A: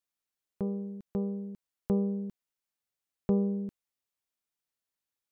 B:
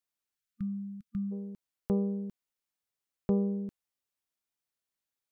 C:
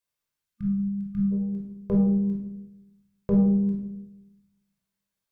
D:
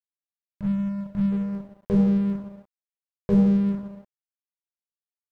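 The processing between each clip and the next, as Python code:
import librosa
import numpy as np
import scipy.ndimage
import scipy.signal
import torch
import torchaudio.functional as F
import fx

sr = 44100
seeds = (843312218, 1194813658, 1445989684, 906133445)

y1 = fx.spec_erase(x, sr, start_s=0.36, length_s=0.96, low_hz=230.0, high_hz=1200.0)
y1 = y1 * librosa.db_to_amplitude(-1.0)
y2 = fx.room_shoebox(y1, sr, seeds[0], volume_m3=2300.0, walls='furnished', distance_m=5.2)
y3 = np.sign(y2) * np.maximum(np.abs(y2) - 10.0 ** (-40.5 / 20.0), 0.0)
y3 = y3 * librosa.db_to_amplitude(2.5)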